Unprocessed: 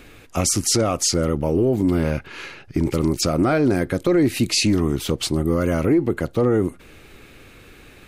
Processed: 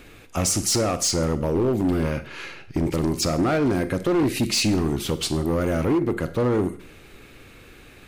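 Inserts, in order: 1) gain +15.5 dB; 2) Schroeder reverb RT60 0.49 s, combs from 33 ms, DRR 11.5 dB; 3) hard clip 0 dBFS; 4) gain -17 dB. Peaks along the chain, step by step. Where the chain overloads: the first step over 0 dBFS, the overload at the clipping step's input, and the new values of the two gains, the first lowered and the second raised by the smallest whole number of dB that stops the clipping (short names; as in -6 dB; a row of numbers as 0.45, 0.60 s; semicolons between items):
+6.0, +8.0, 0.0, -17.0 dBFS; step 1, 8.0 dB; step 1 +7.5 dB, step 4 -9 dB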